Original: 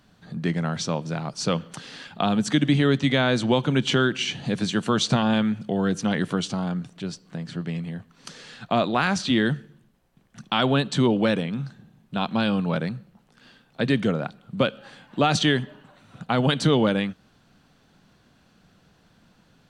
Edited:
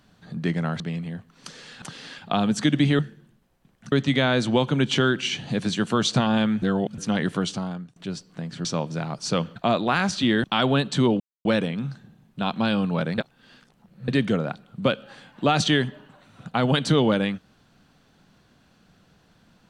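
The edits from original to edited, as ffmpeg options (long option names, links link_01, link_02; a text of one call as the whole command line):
ffmpeg -i in.wav -filter_complex "[0:a]asplit=14[link_01][link_02][link_03][link_04][link_05][link_06][link_07][link_08][link_09][link_10][link_11][link_12][link_13][link_14];[link_01]atrim=end=0.802[link_15];[link_02]atrim=start=7.608:end=8.632[link_16];[link_03]atrim=start=1.708:end=2.882[link_17];[link_04]atrim=start=9.508:end=10.442[link_18];[link_05]atrim=start=2.878:end=5.582[link_19];[link_06]atrim=start=5.578:end=5.942,asetpts=PTS-STARTPTS,areverse[link_20];[link_07]atrim=start=5.938:end=6.92,asetpts=PTS-STARTPTS,afade=type=out:start_time=0.542:duration=0.44:silence=0.0891251[link_21];[link_08]atrim=start=6.92:end=7.612,asetpts=PTS-STARTPTS,afade=type=in:duration=0.004:curve=hsin:silence=0.0891251[link_22];[link_09]atrim=start=0.798:end=1.712[link_23];[link_10]atrim=start=8.628:end=9.512[link_24];[link_11]atrim=start=10.438:end=11.2,asetpts=PTS-STARTPTS,afade=type=out:start_time=0.758:duration=0.004:curve=hsin,apad=pad_dur=0.25[link_25];[link_12]atrim=start=11.2:end=12.932,asetpts=PTS-STARTPTS,afade=type=in:duration=0.004:curve=hsin[link_26];[link_13]atrim=start=12.928:end=13.832,asetpts=PTS-STARTPTS,areverse[link_27];[link_14]atrim=start=13.828[link_28];[link_15][link_16]acrossfade=duration=0.004:curve1=hsin:curve2=hsin[link_29];[link_29][link_17]acrossfade=duration=0.004:curve1=hsin:curve2=hsin[link_30];[link_30][link_18]acrossfade=duration=0.004:curve1=hsin:curve2=hsin[link_31];[link_31][link_19]acrossfade=duration=0.004:curve1=hsin:curve2=hsin[link_32];[link_32][link_20]acrossfade=duration=0.004:curve1=hsin:curve2=hsin[link_33];[link_21][link_22]concat=n=2:v=0:a=1[link_34];[link_33][link_34]acrossfade=duration=0.004:curve1=hsin:curve2=hsin[link_35];[link_35][link_23]acrossfade=duration=0.004:curve1=hsin:curve2=hsin[link_36];[link_36][link_24]acrossfade=duration=0.004:curve1=hsin:curve2=hsin[link_37];[link_25][link_26]concat=n=2:v=0:a=1[link_38];[link_37][link_38]acrossfade=duration=0.004:curve1=hsin:curve2=hsin[link_39];[link_39][link_27]acrossfade=duration=0.004:curve1=hsin:curve2=hsin[link_40];[link_40][link_28]acrossfade=duration=0.004:curve1=hsin:curve2=hsin" out.wav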